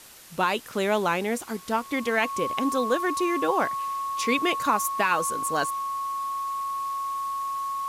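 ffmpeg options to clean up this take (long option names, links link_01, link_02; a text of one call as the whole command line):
ffmpeg -i in.wav -af "bandreject=frequency=1100:width=30,afwtdn=0.0045" out.wav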